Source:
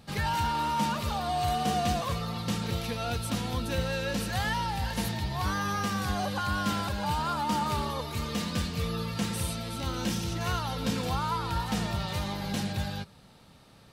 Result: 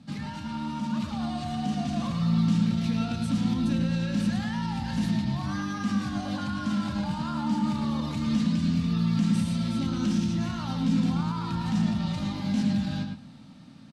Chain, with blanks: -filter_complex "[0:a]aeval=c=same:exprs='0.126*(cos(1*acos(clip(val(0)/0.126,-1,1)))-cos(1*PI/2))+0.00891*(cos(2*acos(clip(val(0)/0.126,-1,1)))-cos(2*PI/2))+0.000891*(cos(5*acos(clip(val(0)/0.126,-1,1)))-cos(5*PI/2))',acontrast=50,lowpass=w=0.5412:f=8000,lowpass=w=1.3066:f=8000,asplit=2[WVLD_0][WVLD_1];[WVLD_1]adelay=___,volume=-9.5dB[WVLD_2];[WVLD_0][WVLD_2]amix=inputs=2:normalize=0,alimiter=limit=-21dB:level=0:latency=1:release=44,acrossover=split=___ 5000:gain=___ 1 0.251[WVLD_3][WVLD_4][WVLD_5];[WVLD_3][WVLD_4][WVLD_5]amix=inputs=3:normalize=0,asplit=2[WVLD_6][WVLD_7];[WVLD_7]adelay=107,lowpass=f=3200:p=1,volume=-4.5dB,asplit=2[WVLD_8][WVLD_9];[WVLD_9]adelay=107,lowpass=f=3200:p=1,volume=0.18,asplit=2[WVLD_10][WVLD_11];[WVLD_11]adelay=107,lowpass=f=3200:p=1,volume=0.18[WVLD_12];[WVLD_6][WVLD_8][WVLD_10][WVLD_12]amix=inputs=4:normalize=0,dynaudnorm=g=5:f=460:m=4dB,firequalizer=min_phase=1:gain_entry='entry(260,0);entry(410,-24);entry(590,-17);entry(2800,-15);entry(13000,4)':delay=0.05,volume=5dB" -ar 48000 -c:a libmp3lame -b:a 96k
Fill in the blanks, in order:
23, 160, 0.0891